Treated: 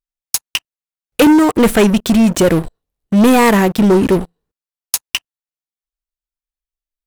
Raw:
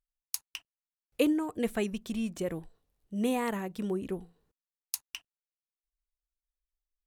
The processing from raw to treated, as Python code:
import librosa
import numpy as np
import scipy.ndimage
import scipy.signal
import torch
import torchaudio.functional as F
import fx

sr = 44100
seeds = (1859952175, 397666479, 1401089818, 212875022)

y = fx.leveller(x, sr, passes=5)
y = y * 10.0 ** (7.5 / 20.0)